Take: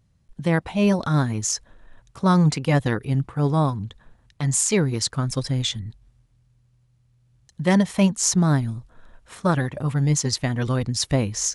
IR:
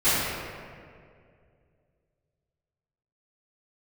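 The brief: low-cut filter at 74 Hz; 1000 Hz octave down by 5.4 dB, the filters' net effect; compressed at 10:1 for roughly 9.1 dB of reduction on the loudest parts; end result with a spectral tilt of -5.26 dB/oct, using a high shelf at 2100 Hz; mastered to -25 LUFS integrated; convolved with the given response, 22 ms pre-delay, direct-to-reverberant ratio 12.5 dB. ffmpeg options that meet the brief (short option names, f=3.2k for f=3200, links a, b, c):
-filter_complex "[0:a]highpass=74,equalizer=f=1k:t=o:g=-5.5,highshelf=f=2.1k:g=-6.5,acompressor=threshold=-24dB:ratio=10,asplit=2[a][b];[1:a]atrim=start_sample=2205,adelay=22[c];[b][c]afir=irnorm=-1:irlink=0,volume=-30.5dB[d];[a][d]amix=inputs=2:normalize=0,volume=4.5dB"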